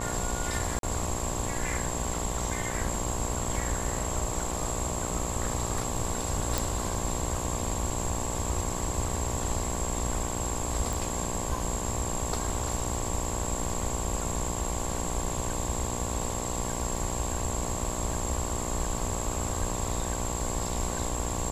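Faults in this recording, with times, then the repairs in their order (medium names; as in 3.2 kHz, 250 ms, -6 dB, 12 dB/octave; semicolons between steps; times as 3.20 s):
buzz 60 Hz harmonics 19 -35 dBFS
0.79–0.83 s: dropout 42 ms
6.58 s: pop
10.93 s: pop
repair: de-click; de-hum 60 Hz, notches 19; interpolate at 0.79 s, 42 ms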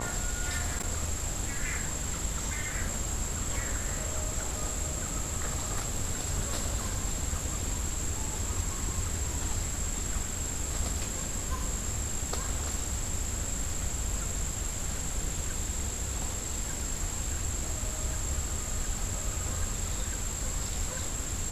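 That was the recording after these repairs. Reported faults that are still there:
nothing left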